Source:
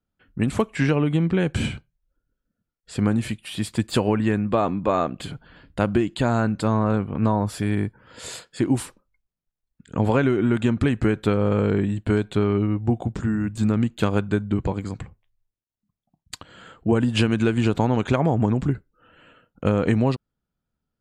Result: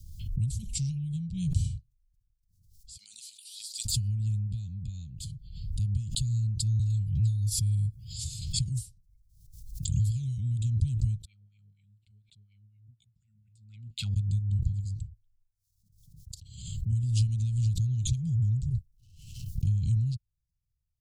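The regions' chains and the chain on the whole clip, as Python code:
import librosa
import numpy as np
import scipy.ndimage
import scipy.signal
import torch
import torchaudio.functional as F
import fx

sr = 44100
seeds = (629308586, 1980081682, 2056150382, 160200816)

y = fx.chain(x, sr, fx.highpass(hz=820.0, slope=24),
    fx.peak_eq(hz=4300.0, db=5.5, octaves=0.61), at=(2.97, 3.85))
y = fx.chain(y, sr, fx.high_shelf(hz=4200.0, db=5.0),
    fx.notch_comb(f0_hz=230.0),
    fx.band_squash(depth_pct=100), at=(6.79, 10.38))
y = fx.chain(y, sr, fx.notch(hz=6200.0, q=5.2),
    fx.wah_lfo(hz=4.1, low_hz=450.0, high_hz=2300.0, q=8.6), at=(11.25, 14.16))
y = fx.chain(y, sr, fx.over_compress(threshold_db=-27.0, ratio=-0.5),
    fx.leveller(passes=1),
    fx.high_shelf(hz=8900.0, db=5.0), at=(18.69, 19.67))
y = scipy.signal.sosfilt(scipy.signal.cheby2(4, 60, [330.0, 1800.0], 'bandstop', fs=sr, output='sos'), y)
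y = fx.high_shelf(y, sr, hz=4100.0, db=-9.0)
y = fx.pre_swell(y, sr, db_per_s=55.0)
y = F.gain(torch.from_numpy(y), 1.5).numpy()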